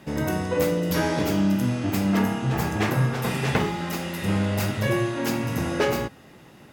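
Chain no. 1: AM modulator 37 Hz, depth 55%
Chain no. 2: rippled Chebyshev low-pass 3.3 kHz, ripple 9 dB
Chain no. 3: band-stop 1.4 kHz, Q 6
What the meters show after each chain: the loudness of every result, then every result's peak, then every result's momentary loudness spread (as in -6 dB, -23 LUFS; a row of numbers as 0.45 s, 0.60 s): -27.5 LUFS, -31.5 LUFS, -24.5 LUFS; -11.0 dBFS, -14.0 dBFS, -8.5 dBFS; 5 LU, 4 LU, 4 LU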